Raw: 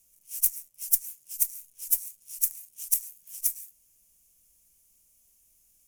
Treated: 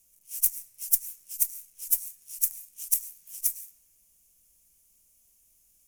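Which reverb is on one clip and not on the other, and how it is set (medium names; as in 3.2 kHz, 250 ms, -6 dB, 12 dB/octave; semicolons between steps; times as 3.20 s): algorithmic reverb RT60 1.9 s, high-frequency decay 0.65×, pre-delay 60 ms, DRR 18.5 dB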